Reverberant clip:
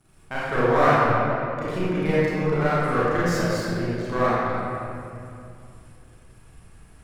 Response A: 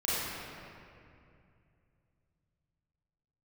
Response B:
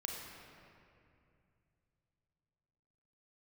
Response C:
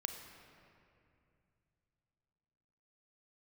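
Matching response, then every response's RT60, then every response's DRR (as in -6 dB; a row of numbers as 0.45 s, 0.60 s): A; 2.5 s, 2.5 s, 2.6 s; -10.0 dB, 0.0 dB, 5.5 dB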